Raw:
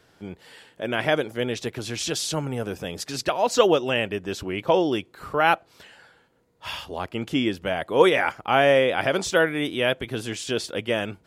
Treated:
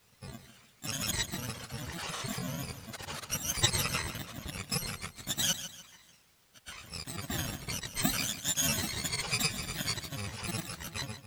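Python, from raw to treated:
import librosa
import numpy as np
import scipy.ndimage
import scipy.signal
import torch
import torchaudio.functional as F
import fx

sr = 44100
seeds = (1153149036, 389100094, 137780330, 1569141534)

p1 = fx.bit_reversed(x, sr, seeds[0], block=128)
p2 = scipy.signal.sosfilt(scipy.signal.butter(2, 9000.0, 'lowpass', fs=sr, output='sos'), p1)
p3 = fx.granulator(p2, sr, seeds[1], grain_ms=100.0, per_s=20.0, spray_ms=100.0, spread_st=7)
p4 = fx.quant_dither(p3, sr, seeds[2], bits=8, dither='triangular')
p5 = p3 + F.gain(torch.from_numpy(p4), -10.5).numpy()
p6 = fx.high_shelf(p5, sr, hz=5700.0, db=-8.0)
p7 = p6 + fx.echo_feedback(p6, sr, ms=148, feedback_pct=37, wet_db=-12, dry=0)
y = F.gain(torch.from_numpy(p7), -4.5).numpy()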